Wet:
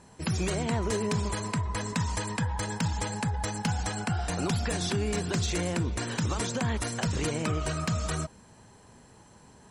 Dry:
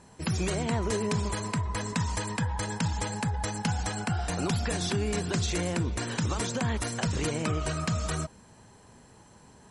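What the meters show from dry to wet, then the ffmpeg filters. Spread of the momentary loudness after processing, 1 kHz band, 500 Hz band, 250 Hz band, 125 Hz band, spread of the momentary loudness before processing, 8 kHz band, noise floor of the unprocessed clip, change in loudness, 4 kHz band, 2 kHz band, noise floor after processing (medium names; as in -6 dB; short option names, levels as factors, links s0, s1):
2 LU, 0.0 dB, 0.0 dB, 0.0 dB, 0.0 dB, 2 LU, 0.0 dB, -55 dBFS, 0.0 dB, 0.0 dB, 0.0 dB, -55 dBFS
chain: -af "asoftclip=type=hard:threshold=0.0944"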